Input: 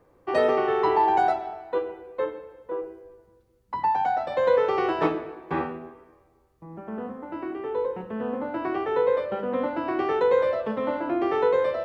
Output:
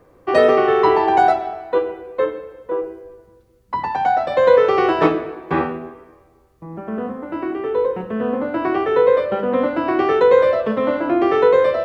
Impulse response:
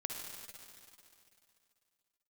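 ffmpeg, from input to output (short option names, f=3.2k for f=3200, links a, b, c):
-af "bandreject=f=870:w=12,volume=8.5dB"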